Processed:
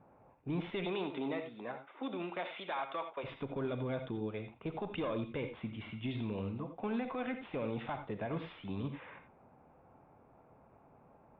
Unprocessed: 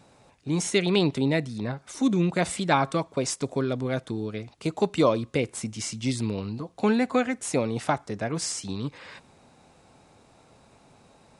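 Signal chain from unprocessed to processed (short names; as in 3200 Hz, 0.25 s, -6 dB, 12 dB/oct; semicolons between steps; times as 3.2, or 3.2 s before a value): one diode to ground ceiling -16.5 dBFS; low-pass opened by the level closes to 1400 Hz, open at -24 dBFS; 0.84–3.23 HPF 280 Hz -> 690 Hz 12 dB/oct; low-pass opened by the level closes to 2100 Hz, open at -21 dBFS; rippled Chebyshev low-pass 3600 Hz, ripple 3 dB; limiter -25.5 dBFS, peak gain reduction 11.5 dB; non-linear reverb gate 0.11 s rising, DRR 7.5 dB; gain -4 dB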